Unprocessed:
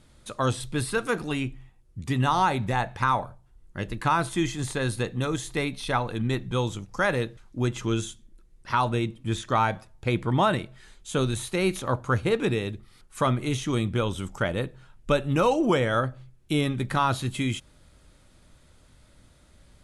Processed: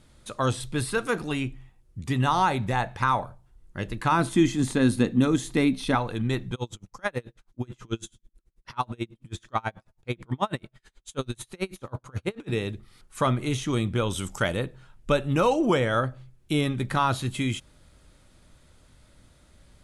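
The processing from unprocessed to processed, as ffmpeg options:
-filter_complex "[0:a]asettb=1/sr,asplit=3[s0][s1][s2];[s0]atrim=end=4.124[s3];[s1]atrim=start=4.12:end=5.95,asetpts=PTS-STARTPTS,afade=t=in:d=0.004:c=qsin,afade=t=out:st=1.826:d=0.004:c=qsin,equalizer=f=250:t=o:w=0.7:g=14[s4];[s2]atrim=start=5.946[s5];[s3][s4]acrossfade=d=0.004:c1=hsin:c2=qsin[s6];[s6][s5]acrossfade=d=0.004:c1=qsin:c2=hsin,asplit=3[s7][s8][s9];[s7]afade=t=out:st=6.54:d=0.02[s10];[s8]aeval=exprs='val(0)*pow(10,-35*(0.5-0.5*cos(2*PI*9.2*n/s))/20)':c=same,afade=t=in:st=6.54:d=0.02,afade=t=out:st=12.51:d=0.02[s11];[s9]afade=t=in:st=12.51:d=0.02[s12];[s10][s11][s12]amix=inputs=3:normalize=0,asettb=1/sr,asplit=3[s13][s14][s15];[s13]atrim=end=14.104[s16];[s14]atrim=start=14.1:end=14.57,asetpts=PTS-STARTPTS,afade=t=in:d=0.004:c=qsin,afade=t=out:st=0.466:d=0.004:c=qsin,highshelf=f=3300:g=10.5[s17];[s15]atrim=start=14.566[s18];[s16][s17]acrossfade=d=0.004:c1=hsin:c2=qsin[s19];[s19][s18]acrossfade=d=0.004:c1=qsin:c2=hsin"

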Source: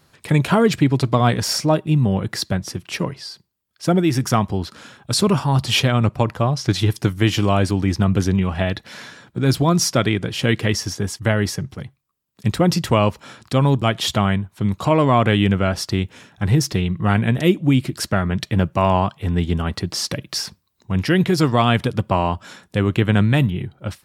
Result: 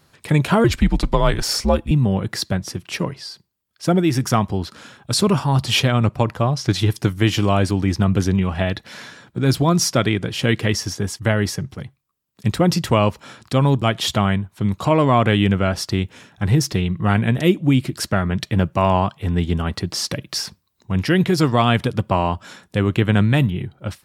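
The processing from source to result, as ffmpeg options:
-filter_complex "[0:a]asettb=1/sr,asplit=3[s0][s1][s2];[s0]atrim=end=0.644[s3];[s1]atrim=start=0.64:end=1.91,asetpts=PTS-STARTPTS,afade=t=in:d=0.004:c=qsin,afade=t=out:st=1.266:d=0.004:c=qsin,afreqshift=-90[s4];[s2]atrim=start=1.906[s5];[s3][s4]acrossfade=d=0.004:c1=hsin:c2=qsin[s6];[s6][s5]acrossfade=d=0.004:c1=qsin:c2=hsin"

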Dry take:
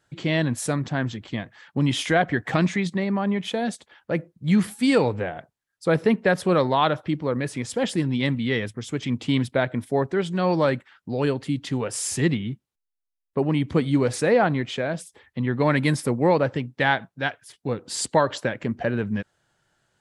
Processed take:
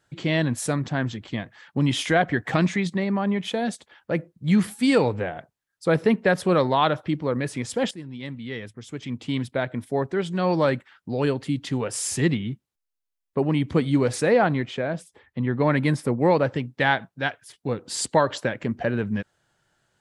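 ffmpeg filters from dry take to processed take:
-filter_complex "[0:a]asettb=1/sr,asplit=3[s0][s1][s2];[s0]atrim=end=14.654[s3];[s1]atrim=start=14.65:end=16.2,asetpts=PTS-STARTPTS,afade=t=in:d=0.004:c=qsin,afade=t=out:st=1.546:d=0.004:c=qsin,highshelf=f=3000:g=-8[s4];[s2]atrim=start=16.196[s5];[s3][s4]acrossfade=d=0.004:c1=hsin:c2=qsin[s6];[s6][s5]acrossfade=d=0.004:c1=qsin:c2=hsin,asplit=2[s7][s8];[s7]atrim=end=7.91,asetpts=PTS-STARTPTS,afade=t=out:st=7.906:d=0.004:c=hsin:silence=0.16788[s9];[s8]atrim=start=7.91,asetpts=PTS-STARTPTS,afade=t=in:d=2.78:silence=0.16788[s10];[s9][s10]concat=n=2:v=0:a=1"

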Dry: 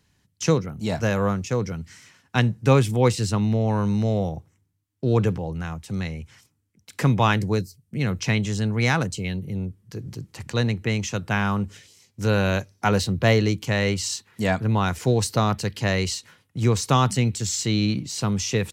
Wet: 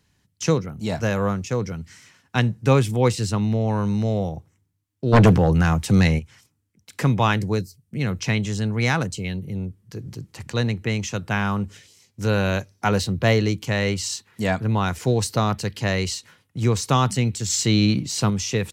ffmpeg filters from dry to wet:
-filter_complex "[0:a]asplit=3[s0][s1][s2];[s0]afade=t=out:st=5.12:d=0.02[s3];[s1]aeval=exprs='0.355*sin(PI/2*2.82*val(0)/0.355)':c=same,afade=t=in:st=5.12:d=0.02,afade=t=out:st=6.18:d=0.02[s4];[s2]afade=t=in:st=6.18:d=0.02[s5];[s3][s4][s5]amix=inputs=3:normalize=0,asplit=3[s6][s7][s8];[s6]atrim=end=17.502[s9];[s7]atrim=start=17.498:end=18.302,asetpts=PTS-STARTPTS,volume=1.58[s10];[s8]atrim=start=18.298[s11];[s9][s10]acrossfade=d=0.004:c1=hsin:c2=hsin[s12];[s12][s11]acrossfade=d=0.004:c1=hsin:c2=hsin"

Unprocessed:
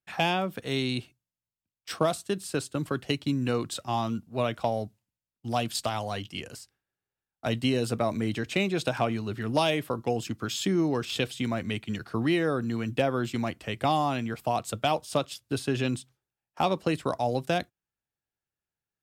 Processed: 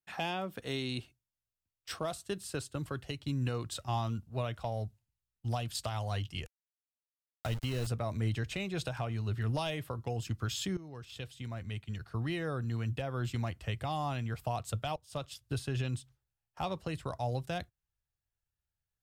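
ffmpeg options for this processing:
-filter_complex "[0:a]asettb=1/sr,asplit=3[s0][s1][s2];[s0]atrim=end=6.464[s3];[s1]atrim=start=6.46:end=7.87,asetpts=PTS-STARTPTS,afade=t=in:d=0.004:c=qsin,afade=t=out:st=1.406:d=0.004:c=qsin,aeval=exprs='val(0)*gte(abs(val(0)),0.0237)':c=same[s4];[s2]atrim=start=7.866[s5];[s3][s4]acrossfade=d=0.004:c1=hsin:c2=qsin[s6];[s6][s5]acrossfade=d=0.004:c1=qsin:c2=hsin,asplit=3[s7][s8][s9];[s7]atrim=end=10.77,asetpts=PTS-STARTPTS,afade=t=out:st=10.766:d=0.004:c=hsin:silence=0.158489[s10];[s8]atrim=start=10.77:end=14.96,asetpts=PTS-STARTPTS,afade=t=in:d=2.82:silence=0.158489,afade=t=out:st=4.186:d=0.004:c=hsin:silence=0.1[s11];[s9]atrim=start=14.96,asetpts=PTS-STARTPTS,afade=t=in:d=0.62:c=qsin:silence=0.1[s12];[s10][s11][s12]concat=n=3:v=0:a=1,bandreject=f=2300:w=27,asubboost=boost=9.5:cutoff=82,alimiter=limit=0.106:level=0:latency=1:release=306,volume=0.596"

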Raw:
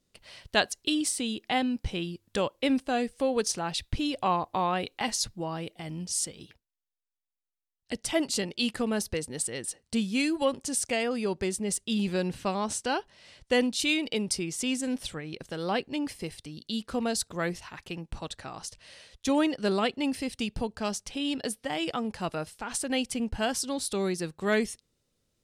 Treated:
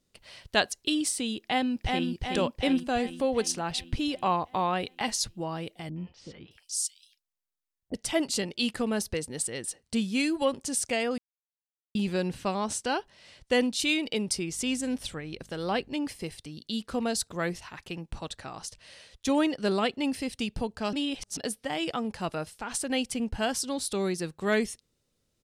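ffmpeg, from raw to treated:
-filter_complex "[0:a]asplit=2[s0][s1];[s1]afade=t=in:st=1.39:d=0.01,afade=t=out:st=2.09:d=0.01,aecho=0:1:370|740|1110|1480|1850|2220|2590|2960|3330:0.707946|0.424767|0.25486|0.152916|0.0917498|0.0550499|0.0330299|0.019818|0.0118908[s2];[s0][s2]amix=inputs=2:normalize=0,asettb=1/sr,asplit=3[s3][s4][s5];[s3]atrim=end=5.894[s6];[s4]atrim=start=5.89:end=7.94,asetpts=PTS-STARTPTS,afade=t=in:d=0.004:c=qsin,afade=t=out:st=2.046:d=0.004:c=qsin,acrossover=split=630|3200[s7][s8][s9];[s8]adelay=70[s10];[s9]adelay=620[s11];[s7][s10][s11]amix=inputs=3:normalize=0,atrim=end_sample=90405[s12];[s5]atrim=start=7.936[s13];[s6][s12]acrossfade=d=0.004:c1=hsin:c2=qsin[s14];[s14][s13]acrossfade=d=0.004:c1=qsin:c2=hsin,asettb=1/sr,asplit=3[s15][s16][s17];[s15]atrim=end=14.494[s18];[s16]atrim=start=14.49:end=15.94,asetpts=PTS-STARTPTS,afade=t=in:d=0.004:c=qsin,afade=t=out:st=1.446:d=0.004:c=qsin,aeval=exprs='val(0)+0.00158*(sin(2*PI*50*n/s)+sin(2*PI*2*50*n/s)/2+sin(2*PI*3*50*n/s)/3+sin(2*PI*4*50*n/s)/4+sin(2*PI*5*50*n/s)/5)':c=same[s19];[s17]atrim=start=15.936[s20];[s18][s19]acrossfade=d=0.004:c1=hsin:c2=qsin[s21];[s21][s20]acrossfade=d=0.004:c1=qsin:c2=hsin,asplit=5[s22][s23][s24][s25][s26];[s22]atrim=end=11.18,asetpts=PTS-STARTPTS,afade=t=out:st=11.176:d=0.004:c=hsin[s27];[s23]atrim=start=11.18:end=11.95,asetpts=PTS-STARTPTS,volume=0[s28];[s24]atrim=start=11.95:end=20.932,asetpts=PTS-STARTPTS,afade=t=in:d=0.004:c=hsin[s29];[s25]atrim=start=20.928:end=21.372,asetpts=PTS-STARTPTS,areverse[s30];[s26]atrim=start=21.368[s31];[s27][s28][s29]concat=n=3:v=0:a=1[s32];[s32][s30]acrossfade=d=0.004:c1=hsin:c2=hsin[s33];[s33][s31]acrossfade=d=0.004:c1=hsin:c2=hsin"

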